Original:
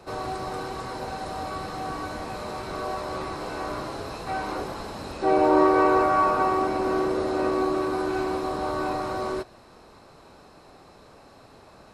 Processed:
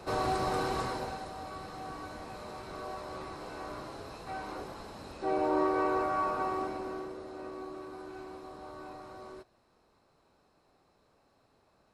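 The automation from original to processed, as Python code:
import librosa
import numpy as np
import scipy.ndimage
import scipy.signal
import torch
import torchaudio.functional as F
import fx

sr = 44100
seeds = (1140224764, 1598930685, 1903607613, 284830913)

y = fx.gain(x, sr, db=fx.line((0.81, 1.0), (1.32, -10.0), (6.62, -10.0), (7.2, -18.0)))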